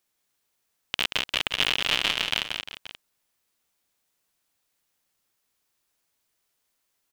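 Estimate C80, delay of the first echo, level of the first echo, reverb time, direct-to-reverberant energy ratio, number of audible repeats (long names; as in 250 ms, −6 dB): no reverb audible, 181 ms, −5.5 dB, no reverb audible, no reverb audible, 3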